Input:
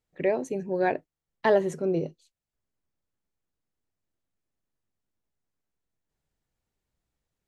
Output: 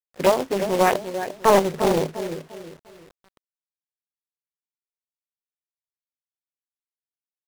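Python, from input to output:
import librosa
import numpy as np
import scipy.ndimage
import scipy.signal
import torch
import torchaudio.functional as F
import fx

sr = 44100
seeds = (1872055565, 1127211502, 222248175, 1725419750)

y = fx.filter_lfo_lowpass(x, sr, shape='saw_up', hz=7.6, low_hz=550.0, high_hz=2300.0, q=2.1)
y = fx.echo_feedback(y, sr, ms=349, feedback_pct=32, wet_db=-10)
y = fx.quant_companded(y, sr, bits=4)
y = fx.doppler_dist(y, sr, depth_ms=0.58)
y = y * 10.0 ** (4.0 / 20.0)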